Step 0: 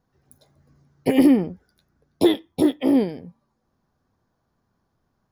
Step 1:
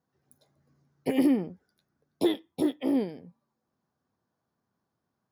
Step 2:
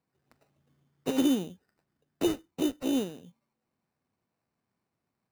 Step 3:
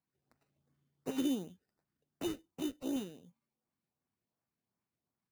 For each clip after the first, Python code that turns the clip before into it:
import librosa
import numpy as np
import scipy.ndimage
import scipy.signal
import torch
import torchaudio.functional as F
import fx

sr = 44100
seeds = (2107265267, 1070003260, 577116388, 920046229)

y1 = scipy.signal.sosfilt(scipy.signal.butter(2, 120.0, 'highpass', fs=sr, output='sos'), x)
y1 = F.gain(torch.from_numpy(y1), -8.0).numpy()
y2 = fx.sample_hold(y1, sr, seeds[0], rate_hz=3300.0, jitter_pct=0)
y2 = F.gain(torch.from_numpy(y2), -2.0).numpy()
y3 = fx.filter_lfo_notch(y2, sr, shape='saw_up', hz=2.7, low_hz=380.0, high_hz=4100.0, q=1.7)
y3 = F.gain(torch.from_numpy(y3), -8.0).numpy()